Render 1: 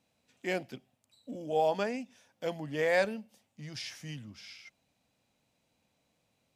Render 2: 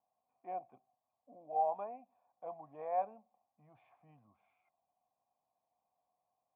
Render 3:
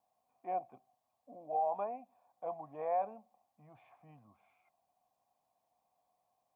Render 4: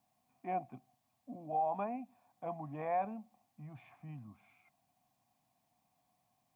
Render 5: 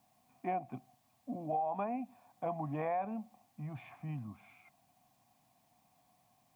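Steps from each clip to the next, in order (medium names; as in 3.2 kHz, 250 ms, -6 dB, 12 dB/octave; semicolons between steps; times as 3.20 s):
cascade formant filter a; trim +4.5 dB
peak limiter -30.5 dBFS, peak gain reduction 7.5 dB; trim +5 dB
graphic EQ 125/250/500/1000/2000 Hz +8/+7/-11/-4/+3 dB; trim +6 dB
compression 6:1, threshold -39 dBFS, peak gain reduction 9 dB; trim +7 dB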